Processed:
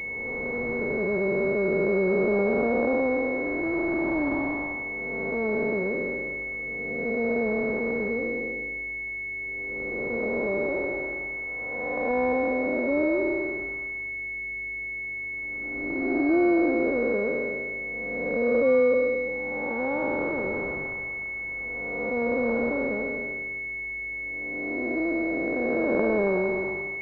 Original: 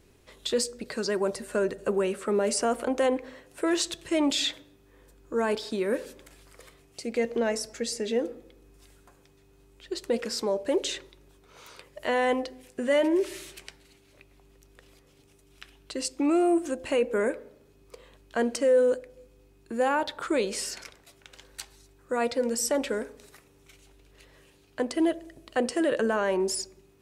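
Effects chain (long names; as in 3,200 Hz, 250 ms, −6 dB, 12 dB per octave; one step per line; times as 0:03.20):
spectrum smeared in time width 627 ms
switching amplifier with a slow clock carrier 2,200 Hz
level +8 dB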